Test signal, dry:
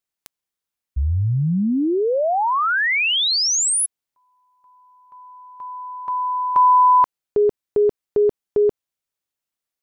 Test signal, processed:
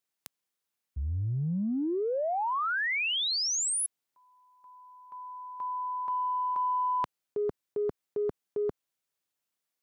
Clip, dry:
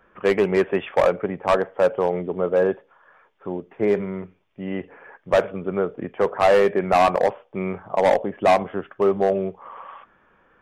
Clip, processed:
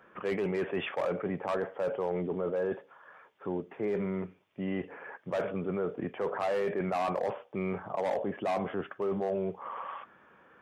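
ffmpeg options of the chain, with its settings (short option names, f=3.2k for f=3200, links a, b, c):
-af "highpass=110,areverse,acompressor=threshold=-30dB:ratio=6:attack=4.8:release=21:knee=6:detection=rms,areverse"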